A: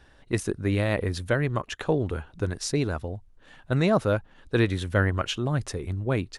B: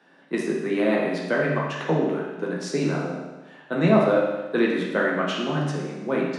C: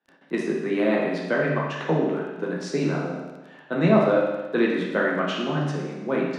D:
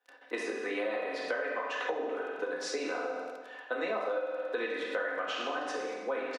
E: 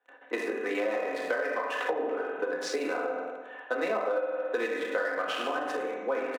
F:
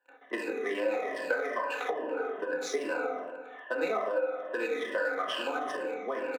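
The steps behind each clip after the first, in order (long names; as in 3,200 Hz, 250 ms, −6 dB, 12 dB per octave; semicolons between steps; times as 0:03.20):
Butterworth high-pass 150 Hz 96 dB per octave; high-shelf EQ 4,000 Hz −11.5 dB; convolution reverb RT60 1.1 s, pre-delay 10 ms, DRR −4 dB
noise gate with hold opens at −46 dBFS; surface crackle 11 per second −37 dBFS; high-frequency loss of the air 50 metres
high-pass filter 410 Hz 24 dB per octave; comb filter 4 ms, depth 66%; downward compressor 6 to 1, threshold −31 dBFS, peak gain reduction 15.5 dB
adaptive Wiener filter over 9 samples; level +4 dB
rippled gain that drifts along the octave scale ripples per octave 1.3, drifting −2.4 Hz, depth 13 dB; level −3.5 dB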